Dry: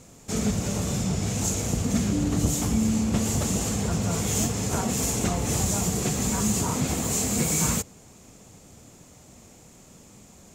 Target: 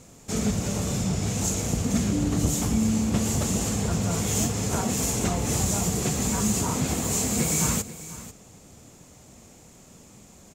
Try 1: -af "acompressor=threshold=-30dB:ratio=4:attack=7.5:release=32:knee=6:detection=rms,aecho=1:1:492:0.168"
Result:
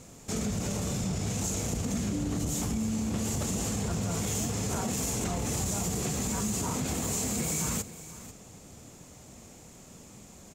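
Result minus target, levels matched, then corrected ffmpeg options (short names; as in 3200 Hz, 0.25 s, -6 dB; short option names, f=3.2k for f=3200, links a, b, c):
compressor: peak gain reduction +11.5 dB
-af "aecho=1:1:492:0.168"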